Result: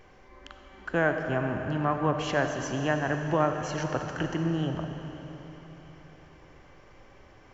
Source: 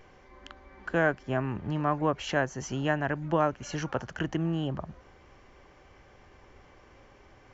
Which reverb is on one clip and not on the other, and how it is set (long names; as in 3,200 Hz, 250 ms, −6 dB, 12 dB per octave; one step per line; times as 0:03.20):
comb and all-pass reverb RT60 4 s, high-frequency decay 0.95×, pre-delay 15 ms, DRR 4.5 dB